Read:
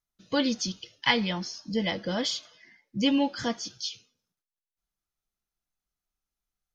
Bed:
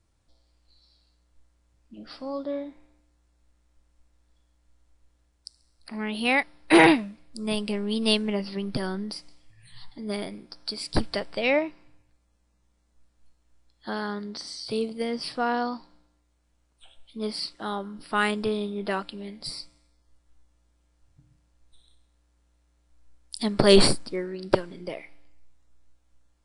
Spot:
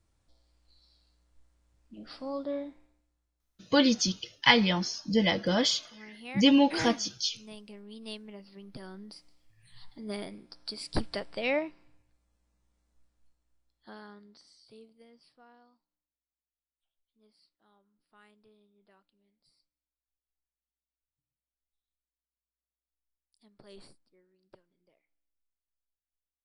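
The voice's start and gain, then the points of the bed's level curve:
3.40 s, +3.0 dB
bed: 0:02.66 −3 dB
0:03.48 −19 dB
0:08.44 −19 dB
0:09.84 −6 dB
0:12.96 −6 dB
0:15.82 −36 dB

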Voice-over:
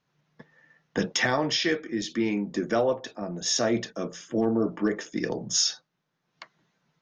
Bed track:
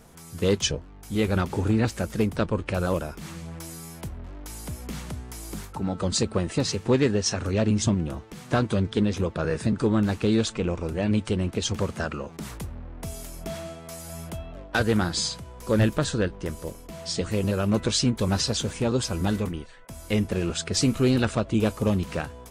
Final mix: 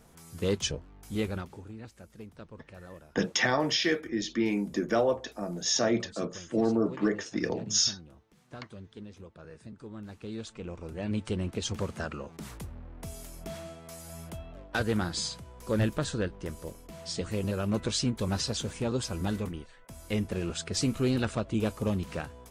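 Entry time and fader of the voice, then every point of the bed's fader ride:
2.20 s, −1.5 dB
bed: 0:01.20 −6 dB
0:01.67 −22 dB
0:09.86 −22 dB
0:11.32 −6 dB

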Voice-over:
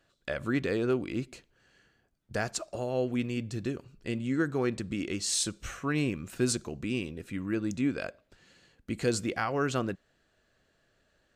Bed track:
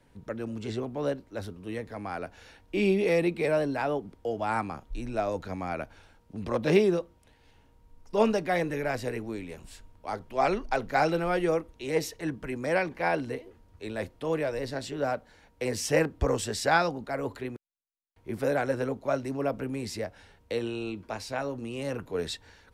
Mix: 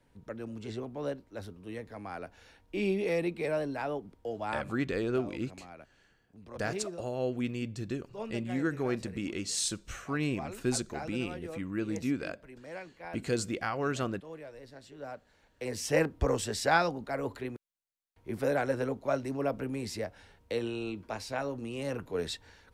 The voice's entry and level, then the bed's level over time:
4.25 s, −2.5 dB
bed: 0:04.50 −5.5 dB
0:04.74 −16.5 dB
0:14.81 −16.5 dB
0:16.01 −2 dB

